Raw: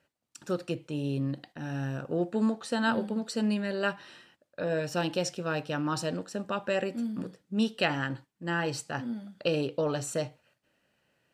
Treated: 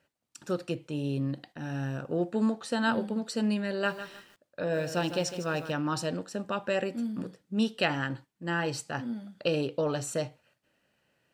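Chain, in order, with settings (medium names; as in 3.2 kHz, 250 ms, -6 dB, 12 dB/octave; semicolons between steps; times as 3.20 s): 3.70–5.72 s: bit-crushed delay 154 ms, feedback 35%, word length 8-bit, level -11 dB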